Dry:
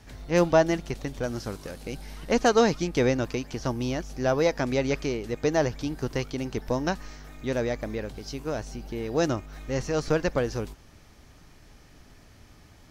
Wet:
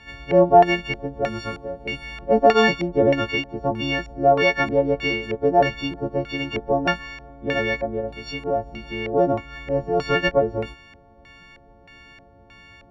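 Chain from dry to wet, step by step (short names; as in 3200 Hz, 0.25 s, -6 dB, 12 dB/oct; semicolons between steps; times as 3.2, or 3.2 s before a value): frequency quantiser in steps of 4 st; LFO low-pass square 1.6 Hz 670–2500 Hz; added harmonics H 4 -40 dB, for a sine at -3 dBFS; gain +2 dB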